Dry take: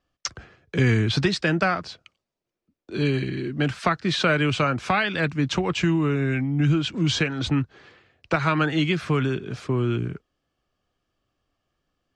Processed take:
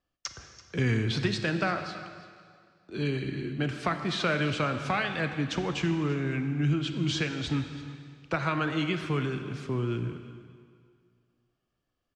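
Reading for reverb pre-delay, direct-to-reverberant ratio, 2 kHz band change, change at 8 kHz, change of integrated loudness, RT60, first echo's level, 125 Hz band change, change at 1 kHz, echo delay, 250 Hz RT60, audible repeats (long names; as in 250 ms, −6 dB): 23 ms, 7.0 dB, −6.0 dB, −6.5 dB, −6.5 dB, 2.1 s, −17.5 dB, −6.0 dB, −6.0 dB, 335 ms, 2.0 s, 1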